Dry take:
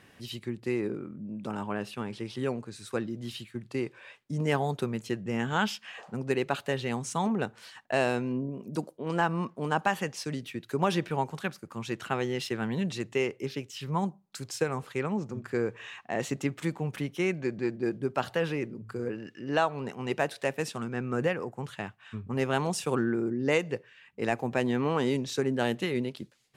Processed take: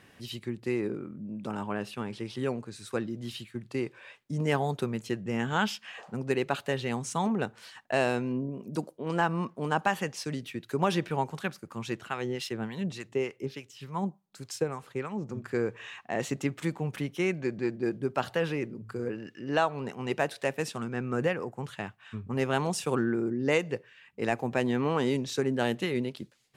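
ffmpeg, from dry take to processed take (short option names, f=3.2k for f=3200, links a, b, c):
-filter_complex "[0:a]asettb=1/sr,asplit=3[a][b][c];[a]atrim=end=12.004[d];[b]atrim=start=12:end=15.28,asetpts=PTS-STARTPTS,afade=t=in:d=0.004:c=qsin,afade=t=out:st=3.276:d=0.004:c=qsin,acrossover=split=860[e][f];[e]aeval=exprs='val(0)*(1-0.7/2+0.7/2*cos(2*PI*3.4*n/s))':c=same[g];[f]aeval=exprs='val(0)*(1-0.7/2-0.7/2*cos(2*PI*3.4*n/s))':c=same[h];[g][h]amix=inputs=2:normalize=0[i];[c]atrim=start=15.276[j];[d][i]acrossfade=d=0.004:c1=hsin:c2=qsin[k];[k][j]acrossfade=d=0.004:c1=qsin:c2=hsin"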